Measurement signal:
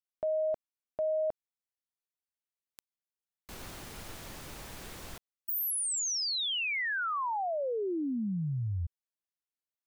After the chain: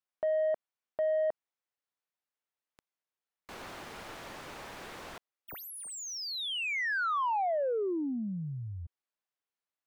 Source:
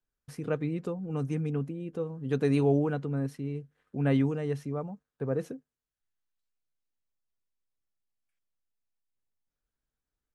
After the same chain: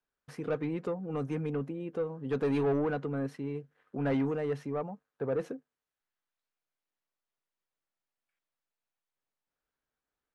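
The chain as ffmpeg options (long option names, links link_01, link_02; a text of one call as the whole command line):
ffmpeg -i in.wav -filter_complex "[0:a]asplit=2[link_01][link_02];[link_02]highpass=frequency=720:poles=1,volume=20dB,asoftclip=type=tanh:threshold=-14dB[link_03];[link_01][link_03]amix=inputs=2:normalize=0,lowpass=frequency=1400:poles=1,volume=-6dB,volume=-6dB" out.wav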